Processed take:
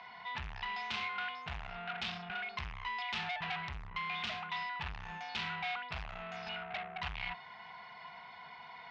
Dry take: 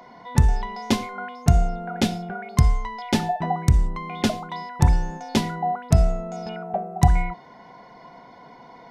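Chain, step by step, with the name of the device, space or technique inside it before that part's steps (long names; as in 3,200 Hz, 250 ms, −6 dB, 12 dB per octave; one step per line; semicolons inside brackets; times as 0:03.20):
scooped metal amplifier (tube saturation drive 32 dB, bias 0.25; loudspeaker in its box 86–3,800 Hz, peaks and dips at 120 Hz −8 dB, 540 Hz −10 dB, 2,600 Hz +5 dB; guitar amp tone stack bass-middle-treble 10-0-10)
level +7 dB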